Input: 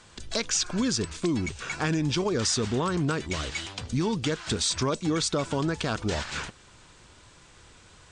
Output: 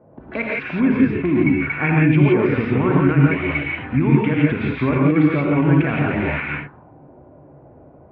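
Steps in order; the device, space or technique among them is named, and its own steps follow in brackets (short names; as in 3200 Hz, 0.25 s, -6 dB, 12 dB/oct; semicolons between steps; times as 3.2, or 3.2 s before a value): envelope filter bass rig (envelope low-pass 550–2300 Hz up, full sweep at -30.5 dBFS; speaker cabinet 84–2300 Hz, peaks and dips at 140 Hz +9 dB, 270 Hz +9 dB, 1200 Hz -3 dB, 1700 Hz -4 dB); non-linear reverb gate 0.19 s rising, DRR -3.5 dB; gain +2 dB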